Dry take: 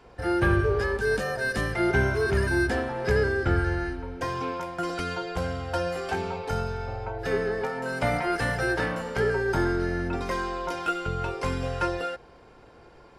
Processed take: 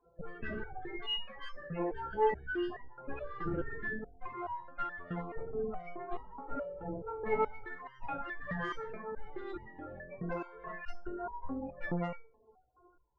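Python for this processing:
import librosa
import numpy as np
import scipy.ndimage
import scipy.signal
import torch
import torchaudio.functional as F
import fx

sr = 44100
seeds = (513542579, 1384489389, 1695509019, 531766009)

y = fx.rattle_buzz(x, sr, strikes_db=-30.0, level_db=-16.0)
y = fx.doubler(y, sr, ms=16.0, db=-9.0)
y = fx.cheby_harmonics(y, sr, harmonics=(8,), levels_db=(-6,), full_scale_db=-9.5)
y = fx.spec_topn(y, sr, count=16)
y = fx.rider(y, sr, range_db=10, speed_s=2.0)
y = 10.0 ** (-10.5 / 20.0) * np.tanh(y / 10.0 ** (-10.5 / 20.0))
y = fx.lowpass(y, sr, hz=1400.0, slope=24, at=(10.93, 11.79), fade=0.02)
y = fx.resonator_held(y, sr, hz=4.7, low_hz=170.0, high_hz=950.0)
y = y * librosa.db_to_amplitude(1.0)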